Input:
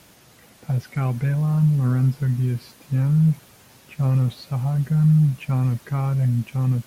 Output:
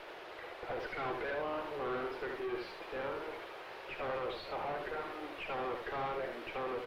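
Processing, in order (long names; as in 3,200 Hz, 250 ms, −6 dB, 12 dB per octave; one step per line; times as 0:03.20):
Butterworth high-pass 340 Hz 72 dB per octave
tube saturation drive 46 dB, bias 0.5
high-frequency loss of the air 400 metres
single-tap delay 75 ms −5 dB
level +11.5 dB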